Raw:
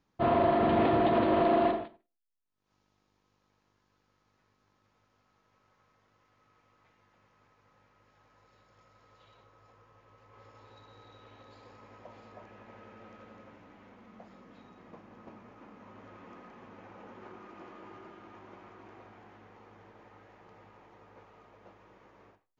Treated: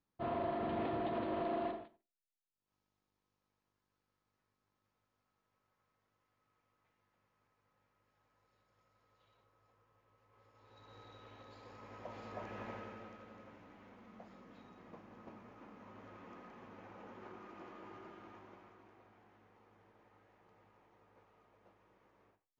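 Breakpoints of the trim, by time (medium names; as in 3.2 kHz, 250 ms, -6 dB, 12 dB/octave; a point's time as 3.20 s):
10.52 s -12.5 dB
10.95 s -2 dB
11.61 s -2 dB
12.65 s +7 dB
13.21 s -3.5 dB
18.27 s -3.5 dB
18.94 s -11.5 dB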